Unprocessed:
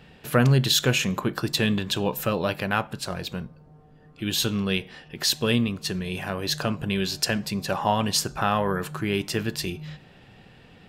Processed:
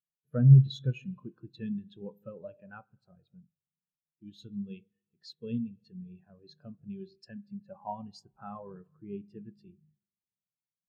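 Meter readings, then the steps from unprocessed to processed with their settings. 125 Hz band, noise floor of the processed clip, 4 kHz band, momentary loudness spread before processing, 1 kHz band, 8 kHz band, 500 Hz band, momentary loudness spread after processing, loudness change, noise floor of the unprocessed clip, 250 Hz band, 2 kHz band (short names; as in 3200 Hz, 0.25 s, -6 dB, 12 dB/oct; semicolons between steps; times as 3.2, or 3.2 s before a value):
0.0 dB, under -85 dBFS, -25.5 dB, 12 LU, -18.5 dB, under -35 dB, -17.5 dB, 26 LU, -2.0 dB, -52 dBFS, -8.5 dB, -27.0 dB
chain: spring tank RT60 2 s, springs 44/49 ms, chirp 25 ms, DRR 10 dB; spectral expander 2.5:1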